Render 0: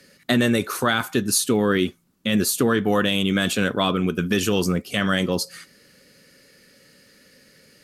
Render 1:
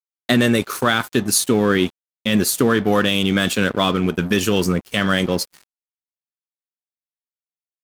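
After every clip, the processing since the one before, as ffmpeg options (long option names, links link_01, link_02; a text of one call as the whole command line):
ffmpeg -i in.wav -af "aeval=exprs='sgn(val(0))*max(abs(val(0))-0.015,0)':channel_layout=same,volume=4dB" out.wav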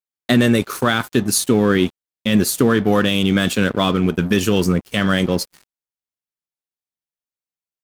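ffmpeg -i in.wav -af "lowshelf=frequency=370:gain=4.5,volume=-1dB" out.wav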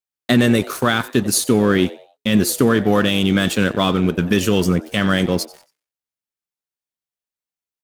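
ffmpeg -i in.wav -filter_complex "[0:a]asplit=4[link_01][link_02][link_03][link_04];[link_02]adelay=91,afreqshift=140,volume=-19.5dB[link_05];[link_03]adelay=182,afreqshift=280,volume=-29.7dB[link_06];[link_04]adelay=273,afreqshift=420,volume=-39.8dB[link_07];[link_01][link_05][link_06][link_07]amix=inputs=4:normalize=0" out.wav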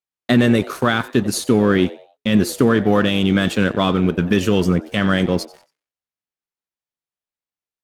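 ffmpeg -i in.wav -af "aemphasis=mode=reproduction:type=cd" out.wav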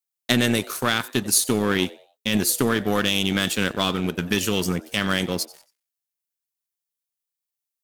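ffmpeg -i in.wav -af "aeval=exprs='0.841*(cos(1*acos(clip(val(0)/0.841,-1,1)))-cos(1*PI/2))+0.119*(cos(3*acos(clip(val(0)/0.841,-1,1)))-cos(3*PI/2))+0.0168*(cos(6*acos(clip(val(0)/0.841,-1,1)))-cos(6*PI/2))':channel_layout=same,crystalizer=i=5:c=0,volume=-4.5dB" out.wav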